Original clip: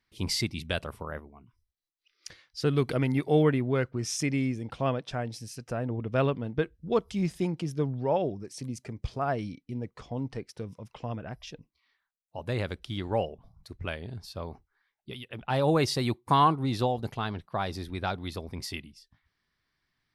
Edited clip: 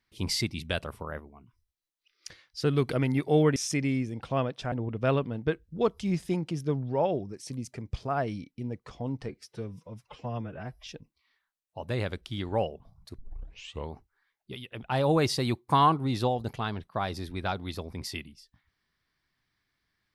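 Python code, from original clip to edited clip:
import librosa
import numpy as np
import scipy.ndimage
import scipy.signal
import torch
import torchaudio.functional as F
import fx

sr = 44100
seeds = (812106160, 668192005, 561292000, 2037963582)

y = fx.edit(x, sr, fx.cut(start_s=3.56, length_s=0.49),
    fx.cut(start_s=5.21, length_s=0.62),
    fx.stretch_span(start_s=10.4, length_s=1.05, factor=1.5),
    fx.tape_start(start_s=13.77, length_s=0.73), tone=tone)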